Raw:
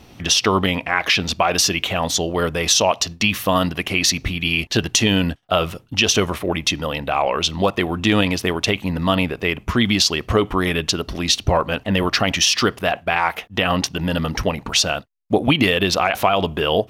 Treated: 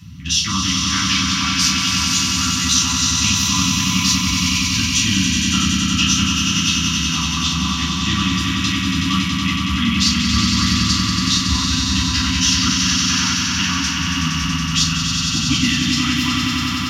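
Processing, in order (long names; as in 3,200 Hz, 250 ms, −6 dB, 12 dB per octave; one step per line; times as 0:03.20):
fade-out on the ending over 1.00 s
upward compression, threshold −38 dBFS
noise in a band 79–190 Hz −32 dBFS
Chebyshev band-stop filter 250–1,100 Hz, order 3
echo that builds up and dies away 93 ms, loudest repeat 5, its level −5.5 dB
convolution reverb, pre-delay 3 ms, DRR −6.5 dB
level −14.5 dB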